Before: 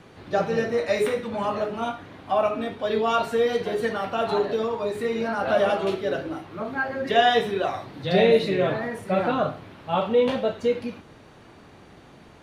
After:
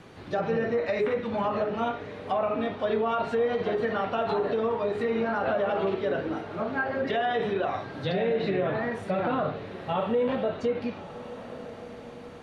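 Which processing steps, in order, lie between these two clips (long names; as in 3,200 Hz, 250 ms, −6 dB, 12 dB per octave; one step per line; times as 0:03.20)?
brickwall limiter −18.5 dBFS, peak gain reduction 11.5 dB
treble cut that deepens with the level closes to 2,100 Hz, closed at −22 dBFS
feedback delay with all-pass diffusion 1,205 ms, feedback 45%, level −14 dB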